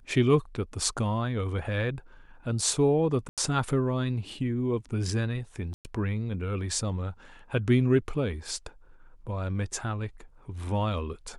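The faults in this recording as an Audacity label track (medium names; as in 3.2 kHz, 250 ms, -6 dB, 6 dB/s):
3.290000	3.380000	dropout 87 ms
5.740000	5.850000	dropout 109 ms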